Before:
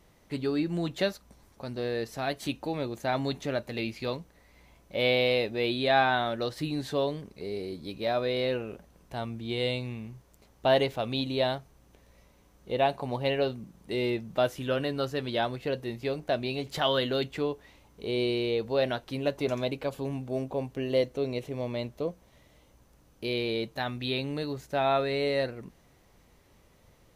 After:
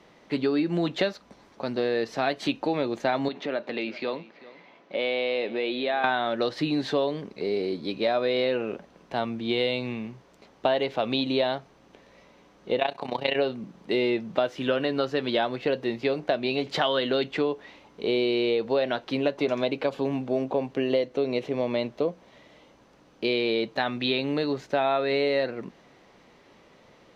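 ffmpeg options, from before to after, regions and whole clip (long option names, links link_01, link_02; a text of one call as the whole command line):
ffmpeg -i in.wav -filter_complex "[0:a]asettb=1/sr,asplit=3[link_01][link_02][link_03];[link_01]atrim=end=3.284[link_04];[link_02]atrim=start=3.28:end=6.04,asetpts=PTS-STARTPTS,afade=type=in:duration=0.004:curve=qsin,afade=type=out:start_time=2.756:duration=0.004:curve=qsin,acompressor=threshold=-34dB:ratio=3:attack=3.2:release=140:knee=1:detection=peak,highpass=220,lowpass=4000,aecho=1:1:392:0.112,atrim=end_sample=121716[link_05];[link_03]atrim=start=6.036[link_06];[link_04][link_05]acrossfade=duration=0.004:curve1=hsin:curve2=qsin[link_07];[link_07][link_06]acrossfade=duration=0.004:curve1=qsin:curve2=hsin,asettb=1/sr,asplit=3[link_08][link_09][link_10];[link_08]atrim=end=12.794[link_11];[link_09]atrim=start=12.79:end=13.36,asetpts=PTS-STARTPTS,afade=type=in:duration=0.004:curve=qsin,afade=type=out:start_time=0.566:duration=0.004:curve=qsin,tremolo=f=30:d=0.824,tiltshelf=frequency=970:gain=-5[link_12];[link_10]atrim=start=13.356[link_13];[link_11][link_12]acrossfade=duration=0.004:curve1=hsin:curve2=qsin[link_14];[link_14][link_13]acrossfade=duration=0.004:curve1=qsin:curve2=hsin,acrossover=split=170 5400:gain=0.112 1 0.0708[link_15][link_16][link_17];[link_15][link_16][link_17]amix=inputs=3:normalize=0,acompressor=threshold=-30dB:ratio=6,volume=9dB" out.wav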